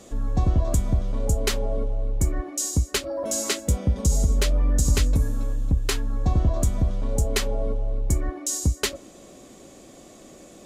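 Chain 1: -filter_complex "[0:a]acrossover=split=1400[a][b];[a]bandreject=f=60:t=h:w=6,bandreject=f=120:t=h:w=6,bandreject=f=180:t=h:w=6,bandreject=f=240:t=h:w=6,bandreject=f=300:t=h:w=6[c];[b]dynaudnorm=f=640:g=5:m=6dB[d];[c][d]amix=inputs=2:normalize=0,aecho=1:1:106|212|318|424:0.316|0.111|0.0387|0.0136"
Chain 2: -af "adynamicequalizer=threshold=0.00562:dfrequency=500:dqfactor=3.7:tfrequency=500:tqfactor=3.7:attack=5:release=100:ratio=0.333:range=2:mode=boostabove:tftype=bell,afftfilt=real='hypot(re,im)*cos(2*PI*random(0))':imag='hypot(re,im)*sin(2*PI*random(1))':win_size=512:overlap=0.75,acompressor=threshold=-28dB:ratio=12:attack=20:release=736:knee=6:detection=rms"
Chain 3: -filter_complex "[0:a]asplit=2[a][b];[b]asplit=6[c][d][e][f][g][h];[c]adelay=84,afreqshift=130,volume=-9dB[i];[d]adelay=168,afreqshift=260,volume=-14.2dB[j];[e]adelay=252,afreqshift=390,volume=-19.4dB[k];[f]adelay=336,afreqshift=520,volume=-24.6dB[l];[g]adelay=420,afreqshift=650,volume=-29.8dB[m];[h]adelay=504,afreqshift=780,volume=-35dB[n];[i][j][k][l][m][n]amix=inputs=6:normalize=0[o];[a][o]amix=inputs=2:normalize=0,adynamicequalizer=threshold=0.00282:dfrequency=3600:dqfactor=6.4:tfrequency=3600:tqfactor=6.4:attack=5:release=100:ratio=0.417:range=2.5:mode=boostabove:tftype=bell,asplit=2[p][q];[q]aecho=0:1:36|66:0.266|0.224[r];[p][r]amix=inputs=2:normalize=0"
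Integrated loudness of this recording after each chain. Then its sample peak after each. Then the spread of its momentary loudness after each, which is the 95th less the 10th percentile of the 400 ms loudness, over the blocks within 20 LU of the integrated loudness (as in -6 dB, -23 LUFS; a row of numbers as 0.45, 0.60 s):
-23.0, -36.5, -23.0 LUFS; -4.0, -19.0, -7.0 dBFS; 9, 17, 5 LU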